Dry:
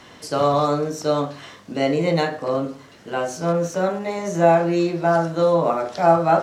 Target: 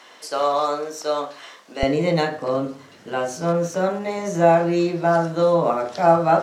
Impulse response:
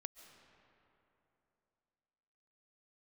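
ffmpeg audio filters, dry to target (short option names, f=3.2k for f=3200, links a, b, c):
-af "asetnsamples=n=441:p=0,asendcmd='1.83 highpass f 82',highpass=510"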